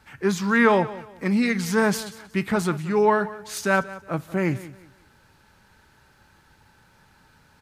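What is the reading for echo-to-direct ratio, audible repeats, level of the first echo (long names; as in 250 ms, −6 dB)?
−16.5 dB, 2, −17.0 dB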